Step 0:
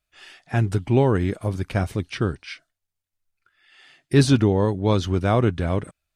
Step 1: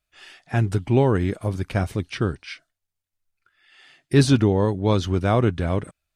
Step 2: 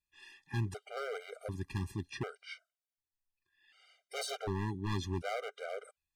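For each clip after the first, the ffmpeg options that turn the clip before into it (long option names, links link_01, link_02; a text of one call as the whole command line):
ffmpeg -i in.wav -af anull out.wav
ffmpeg -i in.wav -af "lowshelf=frequency=480:gain=-5,aeval=exprs='0.119*(abs(mod(val(0)/0.119+3,4)-2)-1)':channel_layout=same,afftfilt=real='re*gt(sin(2*PI*0.67*pts/sr)*(1-2*mod(floor(b*sr/1024/400),2)),0)':imag='im*gt(sin(2*PI*0.67*pts/sr)*(1-2*mod(floor(b*sr/1024/400),2)),0)':win_size=1024:overlap=0.75,volume=-8dB" out.wav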